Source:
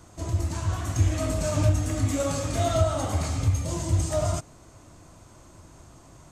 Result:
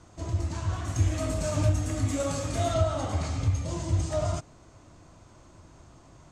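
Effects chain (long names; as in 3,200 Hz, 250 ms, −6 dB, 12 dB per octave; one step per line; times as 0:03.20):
low-pass filter 6,700 Hz 12 dB per octave, from 0:00.88 11,000 Hz, from 0:02.74 6,300 Hz
level −2.5 dB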